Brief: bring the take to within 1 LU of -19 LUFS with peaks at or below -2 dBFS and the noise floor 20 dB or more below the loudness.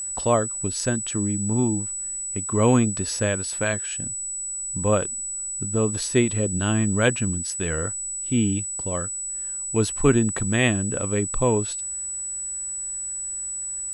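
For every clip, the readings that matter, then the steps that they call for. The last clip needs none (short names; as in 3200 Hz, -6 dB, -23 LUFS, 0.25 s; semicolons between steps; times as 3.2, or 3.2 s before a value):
ticks 22/s; steady tone 7900 Hz; tone level -28 dBFS; loudness -24.0 LUFS; peak -4.0 dBFS; loudness target -19.0 LUFS
-> de-click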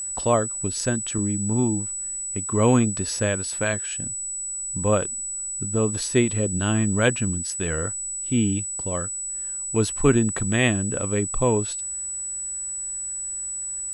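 ticks 0.14/s; steady tone 7900 Hz; tone level -28 dBFS
-> notch 7900 Hz, Q 30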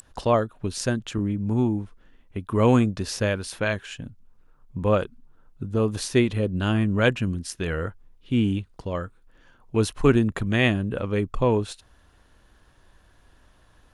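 steady tone none; loudness -24.5 LUFS; peak -4.5 dBFS; loudness target -19.0 LUFS
-> gain +5.5 dB; limiter -2 dBFS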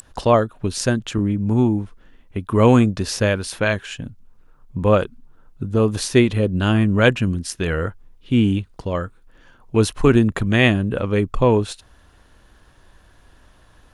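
loudness -19.0 LUFS; peak -2.0 dBFS; noise floor -53 dBFS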